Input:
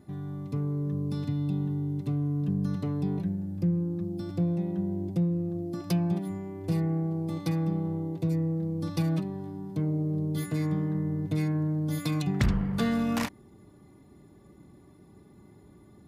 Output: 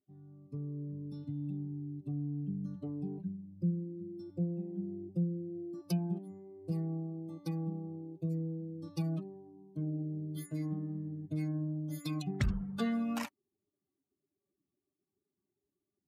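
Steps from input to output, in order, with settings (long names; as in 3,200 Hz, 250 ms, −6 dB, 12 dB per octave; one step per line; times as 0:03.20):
spectral dynamics exaggerated over time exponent 2
level −4 dB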